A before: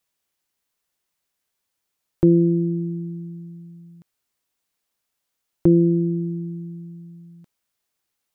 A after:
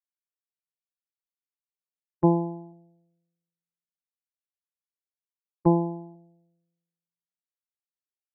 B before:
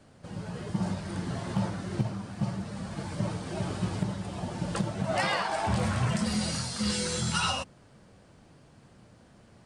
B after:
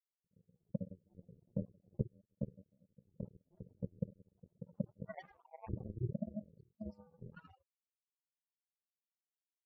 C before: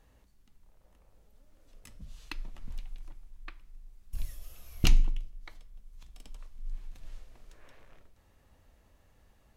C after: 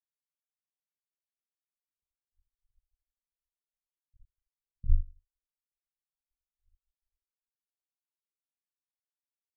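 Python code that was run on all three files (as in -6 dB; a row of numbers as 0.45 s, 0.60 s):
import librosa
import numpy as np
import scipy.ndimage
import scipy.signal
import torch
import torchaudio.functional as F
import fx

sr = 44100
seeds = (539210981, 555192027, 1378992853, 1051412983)

y = fx.spec_topn(x, sr, count=4)
y = fx.power_curve(y, sr, exponent=3.0)
y = fx.env_lowpass(y, sr, base_hz=420.0, full_db=-37.5)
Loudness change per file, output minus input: -5.0 LU, -15.0 LU, +2.0 LU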